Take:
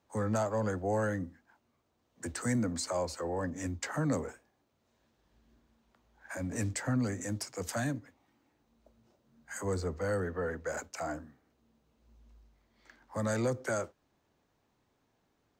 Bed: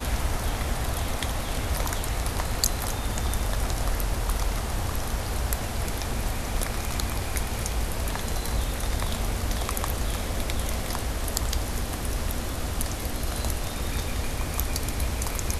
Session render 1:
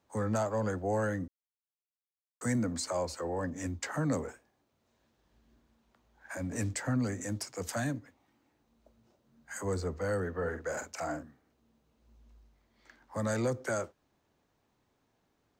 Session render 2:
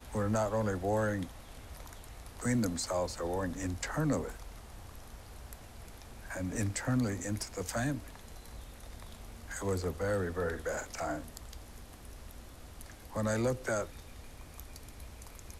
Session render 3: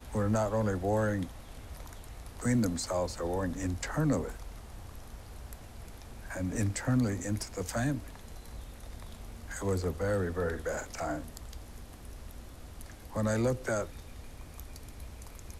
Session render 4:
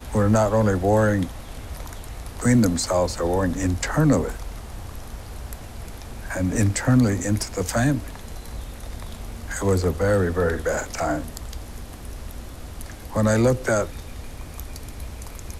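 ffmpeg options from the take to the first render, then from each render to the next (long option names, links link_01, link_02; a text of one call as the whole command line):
ffmpeg -i in.wav -filter_complex "[0:a]asettb=1/sr,asplit=3[link_01][link_02][link_03];[link_01]atrim=end=10.334[link_04];[link_02]atrim=start=10.33:end=11.23,asetpts=PTS-STARTPTS,afade=type=in:duration=0.004:curve=qsin,afade=type=out:start_time=0.896:duration=0.004:curve=qsin,asplit=2[link_05][link_06];[link_06]adelay=46,volume=-7dB[link_07];[link_05][link_07]amix=inputs=2:normalize=0,atrim=end_sample=39690[link_08];[link_03]atrim=start=11.226[link_09];[link_04][link_08]acrossfade=duration=0.004:curve1=hsin:curve2=qsin[link_10];[link_10][link_09]acrossfade=duration=0.004:curve1=qsin:curve2=hsin,asplit=3[link_11][link_12][link_13];[link_11]atrim=end=1.28,asetpts=PTS-STARTPTS,afade=type=out:start_time=1.276:duration=0.004:curve=hsin[link_14];[link_12]atrim=start=1.28:end=2.41,asetpts=PTS-STARTPTS,volume=0[link_15];[link_13]atrim=start=2.41,asetpts=PTS-STARTPTS,afade=type=in:duration=0.004:curve=hsin[link_16];[link_14][link_15][link_16]concat=n=3:v=0:a=1" out.wav
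ffmpeg -i in.wav -i bed.wav -filter_complex "[1:a]volume=-20.5dB[link_01];[0:a][link_01]amix=inputs=2:normalize=0" out.wav
ffmpeg -i in.wav -af "lowshelf=frequency=450:gain=3.5" out.wav
ffmpeg -i in.wav -af "volume=10.5dB" out.wav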